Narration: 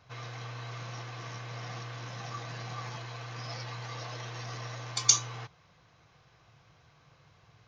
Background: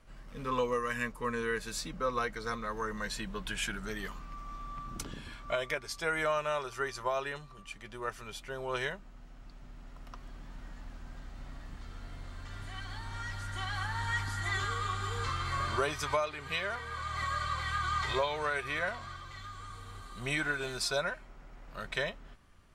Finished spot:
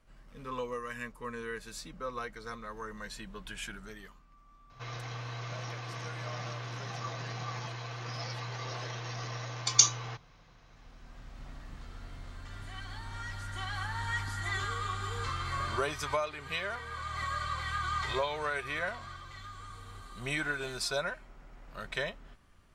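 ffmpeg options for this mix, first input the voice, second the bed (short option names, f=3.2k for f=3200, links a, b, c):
-filter_complex "[0:a]adelay=4700,volume=1dB[a];[1:a]volume=9.5dB,afade=t=out:st=3.74:d=0.49:silence=0.298538,afade=t=in:st=10.67:d=0.8:silence=0.16788[b];[a][b]amix=inputs=2:normalize=0"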